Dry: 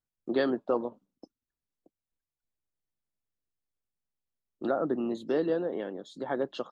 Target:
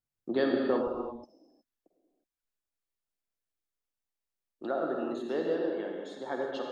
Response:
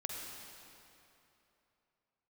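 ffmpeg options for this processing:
-filter_complex "[0:a]asetnsamples=nb_out_samples=441:pad=0,asendcmd='0.87 equalizer g -9',equalizer=frequency=110:width_type=o:width=2.4:gain=2.5[link_01];[1:a]atrim=start_sample=2205,afade=type=out:start_time=0.42:duration=0.01,atrim=end_sample=18963[link_02];[link_01][link_02]afir=irnorm=-1:irlink=0"

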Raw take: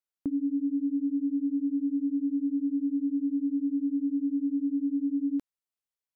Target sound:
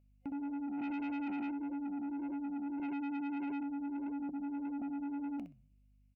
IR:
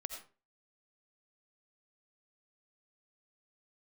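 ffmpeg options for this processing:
-filter_complex "[0:a]asettb=1/sr,asplit=3[link_01][link_02][link_03];[link_01]atrim=end=4.294[link_04];[link_02]atrim=start=4.29:end=4.82,asetpts=PTS-STARTPTS,afade=type=in:duration=0.004:curve=qsin,afade=type=out:start_time=0.526:duration=0.004:curve=qsin,highpass=frequency=190:width=0.5412,highpass=frequency=190:width=1.3066[link_05];[link_03]atrim=start=4.816[link_06];[link_04][link_05]acrossfade=duration=0.004:curve1=hsin:curve2=qsin[link_07];[link_07][link_06]acrossfade=duration=0.004:curve1=qsin:curve2=hsin,aeval=exprs='val(0)+0.000891*(sin(2*PI*50*n/s)+sin(2*PI*2*50*n/s)/2+sin(2*PI*3*50*n/s)/3+sin(2*PI*4*50*n/s)/4+sin(2*PI*5*50*n/s)/5)':channel_layout=same,aecho=1:1:63|126:0.316|0.0506,flanger=delay=3:depth=9.3:regen=-88:speed=1.7:shape=triangular,asplit=3[link_08][link_09][link_10];[link_08]afade=type=out:start_time=0.77:duration=0.02[link_11];[link_09]acontrast=76,afade=type=in:start_time=0.77:duration=0.02,afade=type=out:start_time=1.5:duration=0.02[link_12];[link_10]afade=type=in:start_time=1.5:duration=0.02[link_13];[link_11][link_12][link_13]amix=inputs=3:normalize=0,asettb=1/sr,asplit=3[link_14][link_15][link_16];[link_14]atrim=end=2.794[link_17];[link_15]atrim=start=2.79:end=3.63,asetpts=PTS-STARTPTS,afade=type=in:duration=0.004:curve=qsin,afade=type=out:start_time=0.836:duration=0.004:curve=qsin,aecho=1:1:7.4:0.95,atrim=end_sample=37044[link_18];[link_16]atrim=start=3.626[link_19];[link_17][link_18]acrossfade=duration=0.004:curve1=hsin:curve2=qsin[link_20];[link_20][link_19]acrossfade=duration=0.004:curve1=qsin:curve2=hsin,asoftclip=type=tanh:threshold=-35.5dB,superequalizer=8b=3.55:12b=3.98,volume=-1dB"

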